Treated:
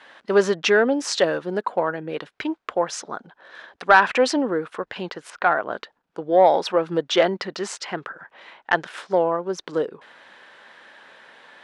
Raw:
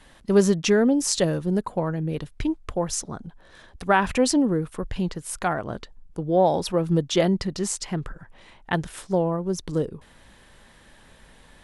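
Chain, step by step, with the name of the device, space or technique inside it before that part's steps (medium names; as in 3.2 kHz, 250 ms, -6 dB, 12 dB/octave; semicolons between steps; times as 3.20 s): intercom (band-pass 490–3700 Hz; peaking EQ 1.5 kHz +4.5 dB 0.42 oct; saturation -9.5 dBFS, distortion -21 dB); 5.30–5.71 s: distance through air 170 m; trim +7 dB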